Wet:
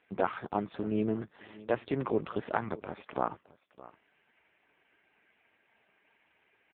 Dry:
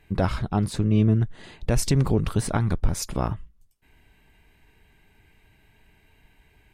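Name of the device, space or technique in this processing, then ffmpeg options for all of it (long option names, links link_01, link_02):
satellite phone: -af "highpass=380,lowpass=3200,aecho=1:1:617:0.106" -ar 8000 -c:a libopencore_amrnb -b:a 5150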